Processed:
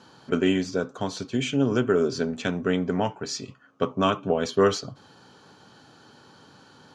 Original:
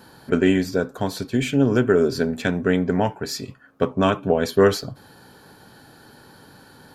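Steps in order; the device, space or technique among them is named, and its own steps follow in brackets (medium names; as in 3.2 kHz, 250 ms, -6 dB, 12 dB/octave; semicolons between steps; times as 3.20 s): car door speaker (cabinet simulation 94–7700 Hz, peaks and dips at 1.2 kHz +6 dB, 1.7 kHz -4 dB, 3 kHz +6 dB, 6.2 kHz +7 dB); trim -4.5 dB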